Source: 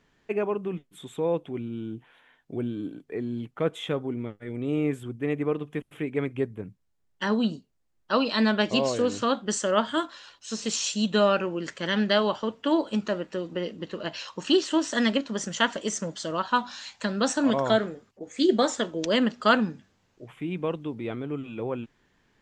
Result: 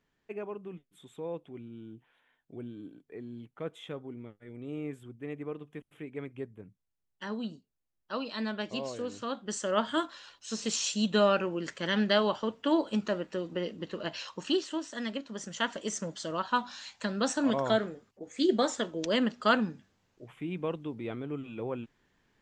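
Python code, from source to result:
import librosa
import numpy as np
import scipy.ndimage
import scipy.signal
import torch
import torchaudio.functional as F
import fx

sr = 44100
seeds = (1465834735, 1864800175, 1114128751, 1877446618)

y = fx.gain(x, sr, db=fx.line((9.2, -11.5), (9.93, -3.0), (14.28, -3.0), (14.93, -13.0), (15.97, -4.5)))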